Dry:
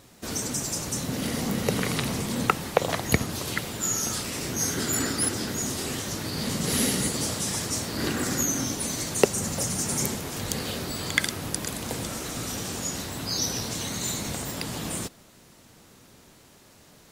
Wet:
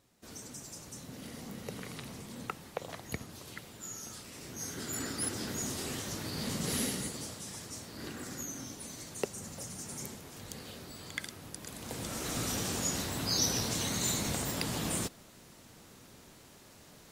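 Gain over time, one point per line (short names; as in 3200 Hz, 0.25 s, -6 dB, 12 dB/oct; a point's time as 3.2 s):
4.25 s -16.5 dB
5.51 s -7 dB
6.66 s -7 dB
7.38 s -15 dB
11.57 s -15 dB
12.33 s -2 dB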